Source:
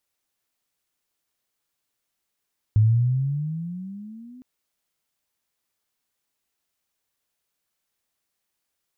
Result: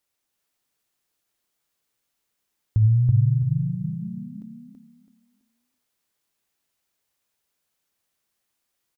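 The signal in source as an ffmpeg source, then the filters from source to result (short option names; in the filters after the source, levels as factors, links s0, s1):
-f lavfi -i "aevalsrc='pow(10,(-12.5-29*t/1.66)/20)*sin(2*PI*105*1.66/(15.5*log(2)/12)*(exp(15.5*log(2)/12*t/1.66)-1))':d=1.66:s=44100"
-filter_complex "[0:a]equalizer=f=170:t=o:w=2.2:g=2,bandreject=f=50:t=h:w=6,bandreject=f=100:t=h:w=6,bandreject=f=150:t=h:w=6,bandreject=f=200:t=h:w=6,bandreject=f=250:t=h:w=6,asplit=2[s0][s1];[s1]aecho=0:1:330|660|990|1320:0.708|0.198|0.0555|0.0155[s2];[s0][s2]amix=inputs=2:normalize=0"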